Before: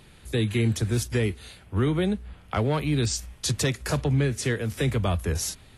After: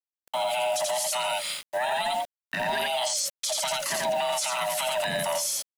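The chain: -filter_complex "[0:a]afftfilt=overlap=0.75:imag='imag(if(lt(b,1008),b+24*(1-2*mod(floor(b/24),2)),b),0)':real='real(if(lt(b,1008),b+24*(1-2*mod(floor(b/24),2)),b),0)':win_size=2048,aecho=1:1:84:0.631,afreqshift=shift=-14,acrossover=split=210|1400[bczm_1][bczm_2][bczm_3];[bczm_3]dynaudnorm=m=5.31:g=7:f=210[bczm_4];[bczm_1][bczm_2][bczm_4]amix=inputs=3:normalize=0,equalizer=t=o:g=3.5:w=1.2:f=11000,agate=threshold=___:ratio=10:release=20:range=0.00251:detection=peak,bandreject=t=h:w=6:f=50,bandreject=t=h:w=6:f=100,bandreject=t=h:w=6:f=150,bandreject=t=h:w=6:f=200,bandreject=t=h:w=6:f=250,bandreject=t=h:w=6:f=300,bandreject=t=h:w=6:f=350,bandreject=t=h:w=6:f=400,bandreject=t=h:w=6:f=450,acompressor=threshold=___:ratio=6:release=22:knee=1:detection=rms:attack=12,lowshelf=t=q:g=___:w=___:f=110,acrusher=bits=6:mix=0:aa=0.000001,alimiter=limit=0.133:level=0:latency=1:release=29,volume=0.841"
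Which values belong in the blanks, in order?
0.0126, 0.1, -14, 3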